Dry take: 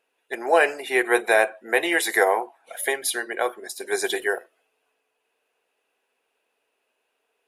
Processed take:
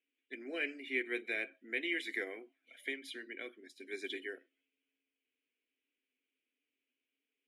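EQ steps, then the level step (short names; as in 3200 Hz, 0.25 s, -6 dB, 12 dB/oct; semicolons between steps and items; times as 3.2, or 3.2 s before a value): vowel filter i; HPF 100 Hz; -1.0 dB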